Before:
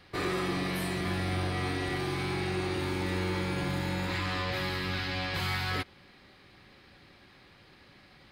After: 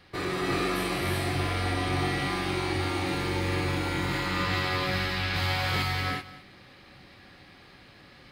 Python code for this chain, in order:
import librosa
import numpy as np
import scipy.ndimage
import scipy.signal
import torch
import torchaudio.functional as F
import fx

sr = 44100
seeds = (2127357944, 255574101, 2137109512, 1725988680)

p1 = x + fx.echo_single(x, sr, ms=207, db=-17.0, dry=0)
y = fx.rev_gated(p1, sr, seeds[0], gate_ms=410, shape='rising', drr_db=-2.5)